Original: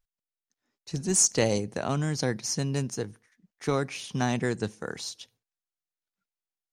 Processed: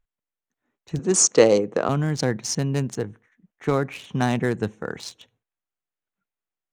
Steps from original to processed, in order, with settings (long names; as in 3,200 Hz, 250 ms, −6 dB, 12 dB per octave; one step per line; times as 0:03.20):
adaptive Wiener filter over 9 samples
0:00.99–0:01.89: loudspeaker in its box 180–8,200 Hz, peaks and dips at 330 Hz +5 dB, 480 Hz +9 dB, 1,200 Hz +8 dB
level +5 dB